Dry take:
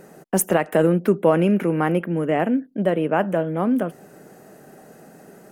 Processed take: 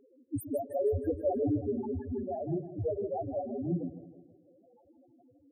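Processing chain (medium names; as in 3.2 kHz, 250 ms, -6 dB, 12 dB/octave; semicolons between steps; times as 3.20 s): ring modulator 89 Hz; loudest bins only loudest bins 1; two-band feedback delay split 380 Hz, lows 112 ms, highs 159 ms, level -12 dB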